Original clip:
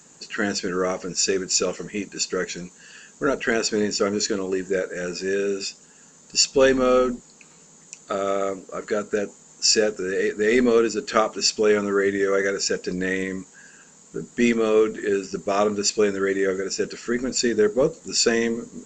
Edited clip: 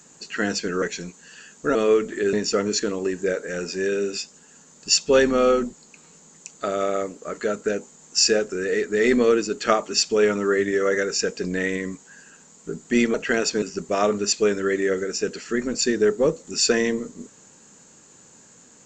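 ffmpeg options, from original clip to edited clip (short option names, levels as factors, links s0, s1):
-filter_complex "[0:a]asplit=6[s0][s1][s2][s3][s4][s5];[s0]atrim=end=0.822[s6];[s1]atrim=start=2.388:end=3.322[s7];[s2]atrim=start=14.608:end=15.192[s8];[s3]atrim=start=3.798:end=14.612[s9];[s4]atrim=start=3.318:end=3.802[s10];[s5]atrim=start=15.188[s11];[s6][s7]acrossfade=d=0.004:c1=hsin:c2=hsin[s12];[s12][s8]acrossfade=d=0.004:c1=hsin:c2=hsin[s13];[s13][s9]acrossfade=d=0.004:c1=hsin:c2=hsin[s14];[s14][s10]acrossfade=d=0.004:c1=hsin:c2=hsin[s15];[s15][s11]acrossfade=d=0.004:c1=hsin:c2=hsin"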